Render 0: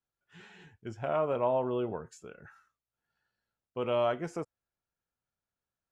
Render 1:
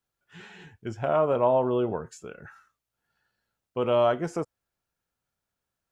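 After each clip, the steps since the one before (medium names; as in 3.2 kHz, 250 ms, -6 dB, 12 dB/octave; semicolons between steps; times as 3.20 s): dynamic bell 2.3 kHz, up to -5 dB, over -52 dBFS, Q 2; trim +6.5 dB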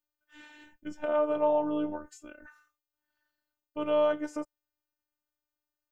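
robot voice 301 Hz; trim -2.5 dB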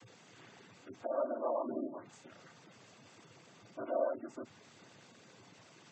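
added noise pink -48 dBFS; noise-vocoded speech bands 16; spectral gate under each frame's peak -20 dB strong; trim -8 dB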